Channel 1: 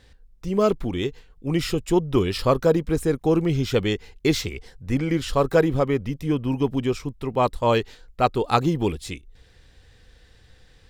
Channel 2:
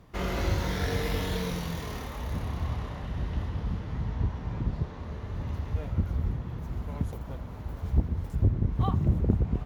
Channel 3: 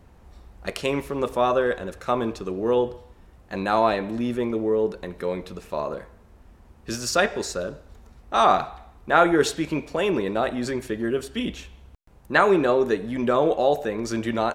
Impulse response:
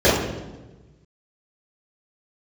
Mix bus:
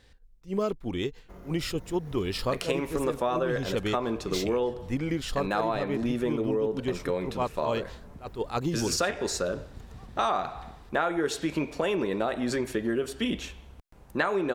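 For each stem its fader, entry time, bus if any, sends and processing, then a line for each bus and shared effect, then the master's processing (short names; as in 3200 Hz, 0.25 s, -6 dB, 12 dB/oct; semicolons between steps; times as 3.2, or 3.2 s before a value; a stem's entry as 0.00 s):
-3.5 dB, 0.00 s, no send, attack slew limiter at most 280 dB/s
-11.5 dB, 1.15 s, no send, bell 3400 Hz -13.5 dB 2.1 oct; compressor, threshold -31 dBFS, peak gain reduction 14 dB
+1.5 dB, 1.85 s, no send, dry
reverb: off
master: bell 72 Hz -3 dB 2 oct; compressor 6:1, threshold -24 dBFS, peak gain reduction 13.5 dB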